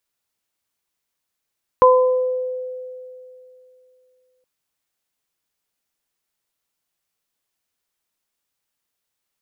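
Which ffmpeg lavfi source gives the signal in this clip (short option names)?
-f lavfi -i "aevalsrc='0.355*pow(10,-3*t/2.85)*sin(2*PI*508*t)+0.398*pow(10,-3*t/0.72)*sin(2*PI*1016*t)':d=2.62:s=44100"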